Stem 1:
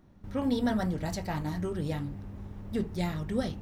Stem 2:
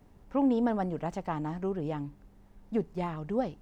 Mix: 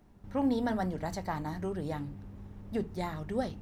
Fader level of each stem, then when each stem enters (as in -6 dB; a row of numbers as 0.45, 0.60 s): -5.5, -4.0 dB; 0.00, 0.00 s